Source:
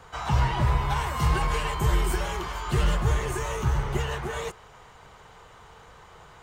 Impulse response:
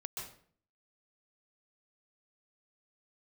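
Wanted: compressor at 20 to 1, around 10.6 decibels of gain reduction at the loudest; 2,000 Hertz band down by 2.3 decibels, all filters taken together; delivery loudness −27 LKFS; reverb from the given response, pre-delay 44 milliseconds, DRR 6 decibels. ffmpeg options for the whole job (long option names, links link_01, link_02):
-filter_complex "[0:a]equalizer=frequency=2000:width_type=o:gain=-3,acompressor=threshold=-28dB:ratio=20,asplit=2[link_01][link_02];[1:a]atrim=start_sample=2205,adelay=44[link_03];[link_02][link_03]afir=irnorm=-1:irlink=0,volume=-5dB[link_04];[link_01][link_04]amix=inputs=2:normalize=0,volume=5.5dB"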